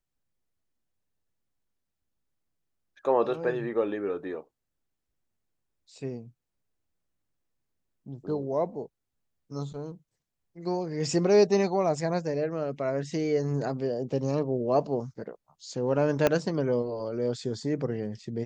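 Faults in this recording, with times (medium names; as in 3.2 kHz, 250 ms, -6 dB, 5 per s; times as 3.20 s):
16.27 s: pop -9 dBFS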